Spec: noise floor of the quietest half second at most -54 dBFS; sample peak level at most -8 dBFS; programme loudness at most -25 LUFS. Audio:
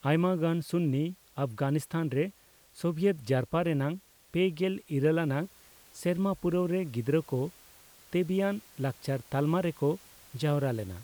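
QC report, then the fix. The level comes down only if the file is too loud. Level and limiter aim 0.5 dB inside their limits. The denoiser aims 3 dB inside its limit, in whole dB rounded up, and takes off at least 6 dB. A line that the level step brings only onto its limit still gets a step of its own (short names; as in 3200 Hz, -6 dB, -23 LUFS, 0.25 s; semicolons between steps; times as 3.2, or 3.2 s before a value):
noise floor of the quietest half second -57 dBFS: OK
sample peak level -14.5 dBFS: OK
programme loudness -30.5 LUFS: OK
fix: none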